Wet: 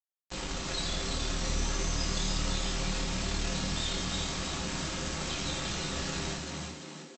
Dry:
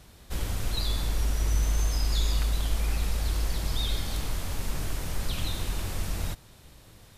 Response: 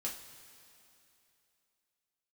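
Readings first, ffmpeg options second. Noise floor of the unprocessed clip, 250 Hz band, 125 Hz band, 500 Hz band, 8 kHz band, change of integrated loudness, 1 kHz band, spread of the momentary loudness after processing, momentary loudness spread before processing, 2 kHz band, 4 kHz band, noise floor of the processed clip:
-53 dBFS, +4.0 dB, -6.0 dB, +3.0 dB, +2.5 dB, -2.0 dB, +2.5 dB, 6 LU, 7 LU, +3.5 dB, +2.0 dB, -50 dBFS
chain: -filter_complex "[0:a]highpass=91,asplit=2[a][b];[b]acompressor=threshold=-44dB:ratio=12,volume=2dB[c];[a][c]amix=inputs=2:normalize=0,afreqshift=-15,aresample=16000,acrusher=bits=3:dc=4:mix=0:aa=0.000001,aresample=44100,asplit=7[d][e][f][g][h][i][j];[e]adelay=339,afreqshift=76,volume=-4dB[k];[f]adelay=678,afreqshift=152,volume=-10.2dB[l];[g]adelay=1017,afreqshift=228,volume=-16.4dB[m];[h]adelay=1356,afreqshift=304,volume=-22.6dB[n];[i]adelay=1695,afreqshift=380,volume=-28.8dB[o];[j]adelay=2034,afreqshift=456,volume=-35dB[p];[d][k][l][m][n][o][p]amix=inputs=7:normalize=0[q];[1:a]atrim=start_sample=2205,atrim=end_sample=6174[r];[q][r]afir=irnorm=-1:irlink=0"

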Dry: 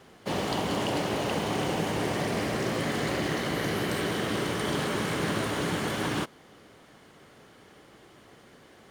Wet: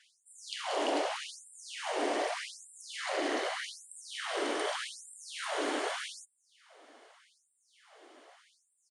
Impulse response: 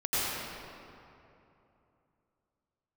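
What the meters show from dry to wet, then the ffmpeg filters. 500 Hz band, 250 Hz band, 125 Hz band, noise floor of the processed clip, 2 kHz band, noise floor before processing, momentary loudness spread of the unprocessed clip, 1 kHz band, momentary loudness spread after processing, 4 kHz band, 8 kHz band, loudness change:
-5.5 dB, -12.0 dB, under -40 dB, -76 dBFS, -5.5 dB, -55 dBFS, 1 LU, -4.5 dB, 12 LU, -4.5 dB, -3.5 dB, -6.0 dB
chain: -af "equalizer=f=670:t=o:w=0.47:g=6,aresample=22050,aresample=44100,afftfilt=real='re*gte(b*sr/1024,220*pow(7400/220,0.5+0.5*sin(2*PI*0.83*pts/sr)))':imag='im*gte(b*sr/1024,220*pow(7400/220,0.5+0.5*sin(2*PI*0.83*pts/sr)))':win_size=1024:overlap=0.75,volume=-3dB"

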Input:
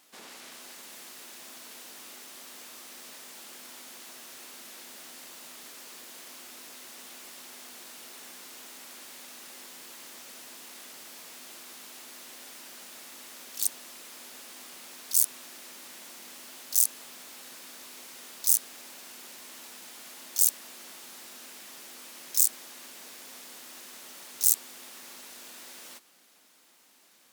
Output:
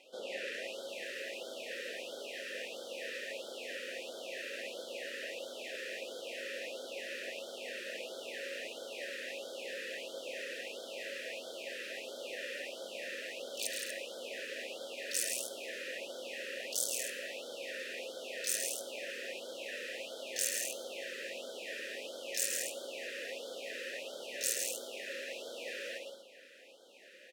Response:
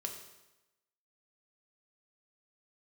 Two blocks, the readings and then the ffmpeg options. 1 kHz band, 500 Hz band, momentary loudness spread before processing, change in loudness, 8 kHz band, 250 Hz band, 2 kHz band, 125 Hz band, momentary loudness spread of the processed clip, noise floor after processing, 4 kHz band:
-3.5 dB, +15.0 dB, 20 LU, -15.0 dB, -8.0 dB, +2.0 dB, +8.5 dB, n/a, 9 LU, -49 dBFS, +1.5 dB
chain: -filter_complex "[0:a]asplit=3[a][b][c];[a]bandpass=f=530:t=q:w=8,volume=0dB[d];[b]bandpass=f=1.84k:t=q:w=8,volume=-6dB[e];[c]bandpass=f=2.48k:t=q:w=8,volume=-9dB[f];[d][e][f]amix=inputs=3:normalize=0,aecho=1:1:107.9|166.2|239.1:0.501|0.501|0.355,asplit=2[g][h];[1:a]atrim=start_sample=2205[i];[h][i]afir=irnorm=-1:irlink=0,volume=-3.5dB[j];[g][j]amix=inputs=2:normalize=0,afftfilt=real='re*(1-between(b*sr/1024,840*pow(2200/840,0.5+0.5*sin(2*PI*1.5*pts/sr))/1.41,840*pow(2200/840,0.5+0.5*sin(2*PI*1.5*pts/sr))*1.41))':imag='im*(1-between(b*sr/1024,840*pow(2200/840,0.5+0.5*sin(2*PI*1.5*pts/sr))/1.41,840*pow(2200/840,0.5+0.5*sin(2*PI*1.5*pts/sr))*1.41))':win_size=1024:overlap=0.75,volume=15.5dB"

